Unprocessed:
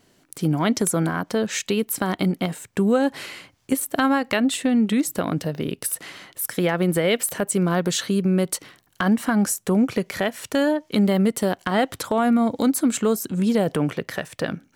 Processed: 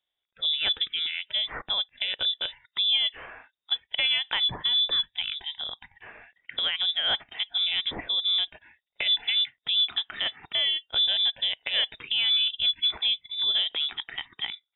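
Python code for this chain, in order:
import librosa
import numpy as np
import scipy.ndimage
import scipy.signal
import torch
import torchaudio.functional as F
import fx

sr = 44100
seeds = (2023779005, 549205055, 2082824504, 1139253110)

y = fx.noise_reduce_blind(x, sr, reduce_db=20)
y = fx.freq_invert(y, sr, carrier_hz=3700)
y = y * librosa.db_to_amplitude(-5.5)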